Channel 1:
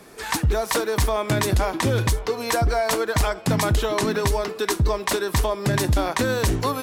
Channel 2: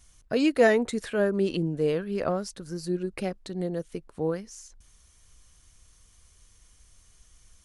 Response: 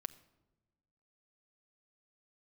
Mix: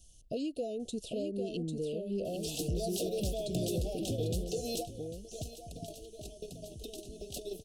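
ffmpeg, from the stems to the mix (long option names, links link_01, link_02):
-filter_complex "[0:a]acompressor=threshold=-29dB:ratio=6,adelay=2250,volume=-1.5dB,asplit=2[link_01][link_02];[link_02]volume=-15.5dB[link_03];[1:a]acompressor=threshold=-30dB:ratio=12,volume=-1.5dB,asplit=3[link_04][link_05][link_06];[link_05]volume=-5.5dB[link_07];[link_06]apad=whole_len=400224[link_08];[link_01][link_08]sidechaingate=range=-33dB:threshold=-54dB:ratio=16:detection=peak[link_09];[link_03][link_07]amix=inputs=2:normalize=0,aecho=0:1:797:1[link_10];[link_09][link_04][link_10]amix=inputs=3:normalize=0,asoftclip=type=tanh:threshold=-25.5dB,asuperstop=centerf=1400:order=20:qfactor=0.72"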